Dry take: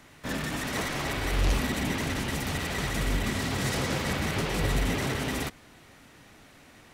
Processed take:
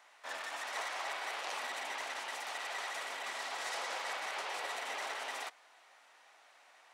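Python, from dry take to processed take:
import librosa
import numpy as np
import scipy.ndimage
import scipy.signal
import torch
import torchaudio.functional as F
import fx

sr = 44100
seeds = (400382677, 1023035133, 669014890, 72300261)

y = fx.ladder_highpass(x, sr, hz=610.0, resonance_pct=35)
y = fx.peak_eq(y, sr, hz=14000.0, db=-13.5, octaves=0.51)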